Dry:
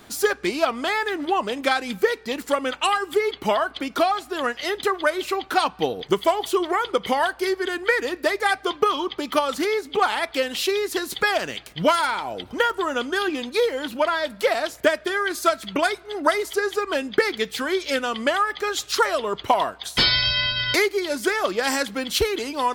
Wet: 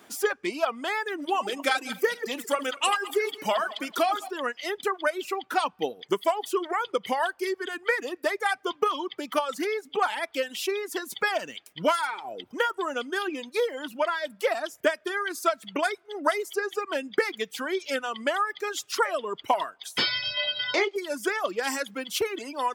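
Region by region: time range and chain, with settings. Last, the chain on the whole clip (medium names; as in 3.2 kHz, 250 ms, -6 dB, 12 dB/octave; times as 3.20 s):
1.18–4.31 s: backward echo that repeats 107 ms, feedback 50%, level -8 dB + treble shelf 3 kHz +7 dB
20.37–20.96 s: cabinet simulation 170–5700 Hz, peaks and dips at 250 Hz -6 dB, 590 Hz +8 dB, 850 Hz +6 dB, 1.7 kHz -4 dB, 3.4 kHz +5 dB + doubling 25 ms -7 dB
whole clip: reverb removal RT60 1.1 s; high-pass 220 Hz 12 dB/octave; peaking EQ 4.1 kHz -7.5 dB 0.26 oct; trim -4.5 dB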